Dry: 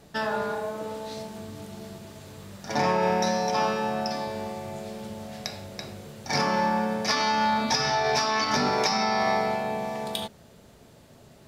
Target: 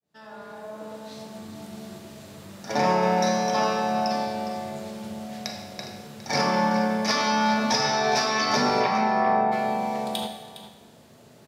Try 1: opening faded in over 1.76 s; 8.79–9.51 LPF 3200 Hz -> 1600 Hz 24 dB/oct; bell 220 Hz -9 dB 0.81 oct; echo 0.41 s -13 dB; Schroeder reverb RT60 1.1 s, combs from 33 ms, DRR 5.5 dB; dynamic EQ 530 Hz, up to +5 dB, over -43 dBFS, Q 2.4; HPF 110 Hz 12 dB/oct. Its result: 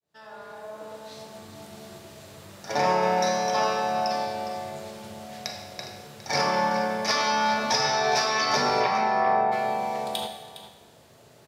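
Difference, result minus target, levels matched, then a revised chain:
250 Hz band -7.0 dB
opening faded in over 1.76 s; 8.79–9.51 LPF 3200 Hz -> 1600 Hz 24 dB/oct; echo 0.41 s -13 dB; Schroeder reverb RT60 1.1 s, combs from 33 ms, DRR 5.5 dB; dynamic EQ 530 Hz, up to +5 dB, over -43 dBFS, Q 2.4; HPF 110 Hz 12 dB/oct

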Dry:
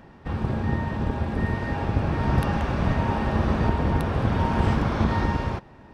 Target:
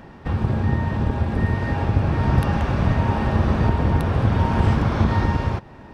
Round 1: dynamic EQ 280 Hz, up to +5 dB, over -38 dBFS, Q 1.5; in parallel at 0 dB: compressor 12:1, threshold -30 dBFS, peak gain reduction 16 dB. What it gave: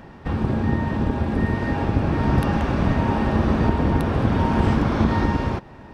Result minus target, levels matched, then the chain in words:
250 Hz band +3.0 dB
dynamic EQ 100 Hz, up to +5 dB, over -38 dBFS, Q 1.5; in parallel at 0 dB: compressor 12:1, threshold -30 dBFS, peak gain reduction 17.5 dB

